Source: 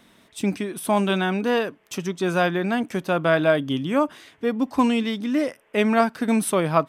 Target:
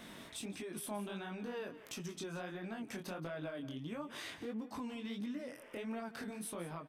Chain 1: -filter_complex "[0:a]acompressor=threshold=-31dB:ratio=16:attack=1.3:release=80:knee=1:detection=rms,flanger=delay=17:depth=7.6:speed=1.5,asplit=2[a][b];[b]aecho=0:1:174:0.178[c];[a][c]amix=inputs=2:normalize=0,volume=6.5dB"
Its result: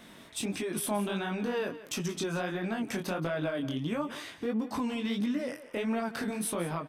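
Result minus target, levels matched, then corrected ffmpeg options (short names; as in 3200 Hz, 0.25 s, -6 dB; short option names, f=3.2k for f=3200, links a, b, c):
compressor: peak gain reduction -11 dB
-filter_complex "[0:a]acompressor=threshold=-42.5dB:ratio=16:attack=1.3:release=80:knee=1:detection=rms,flanger=delay=17:depth=7.6:speed=1.5,asplit=2[a][b];[b]aecho=0:1:174:0.178[c];[a][c]amix=inputs=2:normalize=0,volume=6.5dB"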